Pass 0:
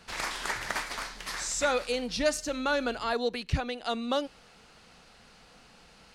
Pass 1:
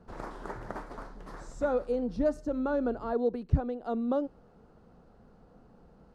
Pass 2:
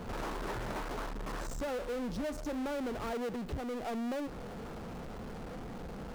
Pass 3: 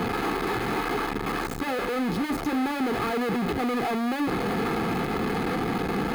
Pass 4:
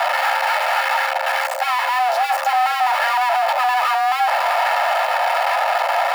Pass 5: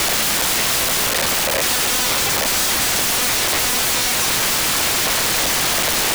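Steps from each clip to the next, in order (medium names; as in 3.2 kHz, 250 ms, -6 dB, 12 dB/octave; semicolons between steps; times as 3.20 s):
FFT filter 400 Hz 0 dB, 1.4 kHz -13 dB, 2.3 kHz -28 dB; trim +3.5 dB
compression, threshold -34 dBFS, peak gain reduction 15 dB; power-law waveshaper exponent 0.35; trim -8.5 dB
one-bit comparator; reverberation RT60 0.40 s, pre-delay 3 ms, DRR 16.5 dB; trim +3.5 dB
frequency shift +500 Hz; trim +8.5 dB
integer overflow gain 21.5 dB; trim +8 dB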